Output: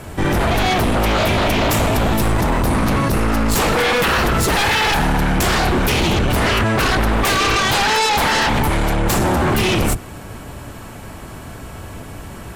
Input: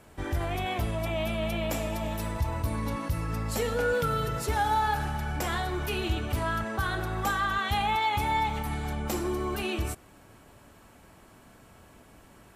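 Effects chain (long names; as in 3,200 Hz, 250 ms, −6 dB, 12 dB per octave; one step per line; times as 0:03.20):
sub-octave generator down 1 octave, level +2 dB
sine wavefolder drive 15 dB, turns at −13 dBFS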